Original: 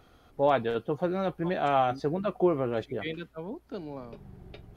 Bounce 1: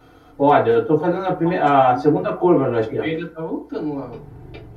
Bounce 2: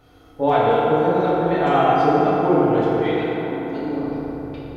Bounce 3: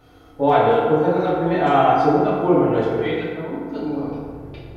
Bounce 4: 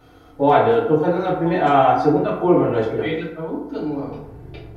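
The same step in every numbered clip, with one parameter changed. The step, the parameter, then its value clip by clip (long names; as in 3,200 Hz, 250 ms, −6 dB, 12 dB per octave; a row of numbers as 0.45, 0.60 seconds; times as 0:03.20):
feedback delay network reverb, RT60: 0.37, 4.3, 2, 0.88 seconds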